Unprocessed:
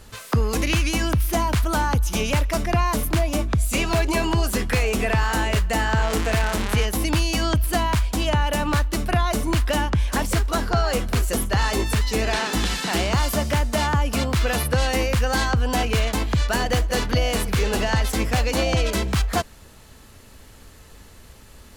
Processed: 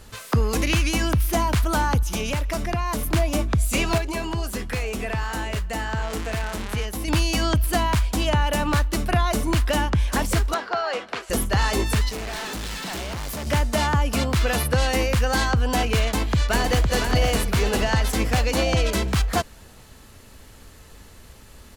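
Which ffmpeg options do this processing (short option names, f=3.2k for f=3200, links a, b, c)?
-filter_complex "[0:a]asettb=1/sr,asplit=3[a][b][c];[a]atrim=end=2.024[d];[b]atrim=start=2.02:end=3.13,asetpts=PTS-STARTPTS,afade=t=in:d=0.004:c=qsin,afade=t=out:st=1.106:d=0.004:c=qsin,acompressor=threshold=-22dB:ratio=3:attack=3.2:release=140:knee=1:detection=peak[e];[c]atrim=start=3.126[f];[d][e]acrossfade=d=0.004:c1=hsin:c2=qsin[g];[g][f]acrossfade=d=0.004:c1=qsin:c2=hsin,asettb=1/sr,asplit=3[h][i][j];[h]atrim=end=10.544[k];[i]atrim=start=10.54:end=11.3,asetpts=PTS-STARTPTS,afade=t=in:d=0.004:c=qsin,afade=t=out:st=0.756:d=0.004:c=qsin,highpass=520,lowpass=3.7k[l];[j]atrim=start=11.296[m];[k][l]acrossfade=d=0.004:c1=hsin:c2=qsin[n];[n][m]acrossfade=d=0.004:c1=qsin:c2=hsin,asettb=1/sr,asplit=3[o][p][q];[o]atrim=end=12.094[r];[p]atrim=start=12.09:end=13.47,asetpts=PTS-STARTPTS,afade=t=in:d=0.004:c=qsin,afade=t=out:st=1.376:d=0.004:c=qsin,asoftclip=type=hard:threshold=-29dB[s];[q]atrim=start=13.466[t];[r][s]acrossfade=d=0.004:c1=hsin:c2=qsin[u];[u][t]acrossfade=d=0.004:c1=qsin:c2=hsin,asplit=2[v][w];[w]afade=t=in:st=15.99:d=0.01,afade=t=out:st=16.92:d=0.01,aecho=0:1:510|1020|1530|2040|2550|3060:0.501187|0.250594|0.125297|0.0626484|0.0313242|0.0156621[x];[v][x]amix=inputs=2:normalize=0,asplit=3[y][z][aa];[y]atrim=end=3.982[ab];[z]atrim=start=3.978:end=7.082,asetpts=PTS-STARTPTS,volume=-6dB[ac];[aa]atrim=start=7.078[ad];[ab][ac]acrossfade=d=0.004:c1=hsin:c2=hsin[ae];[ae][ad]acrossfade=d=0.004:c1=hsin:c2=hsin"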